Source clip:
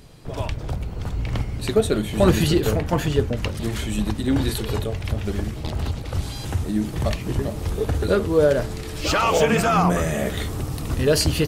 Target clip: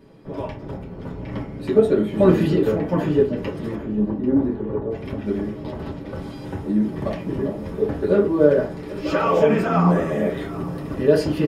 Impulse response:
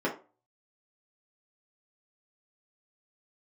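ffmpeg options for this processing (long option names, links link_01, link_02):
-filter_complex "[0:a]asettb=1/sr,asplit=3[link_01][link_02][link_03];[link_01]atrim=end=3.754[link_04];[link_02]atrim=start=3.75:end=4.91,asetpts=PTS-STARTPTS,afade=type=in:duration=0.004:curve=qsin,afade=type=out:start_time=1.156:duration=0.004:curve=qsin,lowpass=1000[link_05];[link_03]atrim=start=4.906[link_06];[link_04][link_05]acrossfade=duration=0.004:curve1=hsin:curve2=qsin[link_07];[link_07][link_06]acrossfade=duration=0.004:curve1=qsin:curve2=hsin,aecho=1:1:792|1584:0.141|0.0339[link_08];[1:a]atrim=start_sample=2205[link_09];[link_08][link_09]afir=irnorm=-1:irlink=0,volume=-11.5dB"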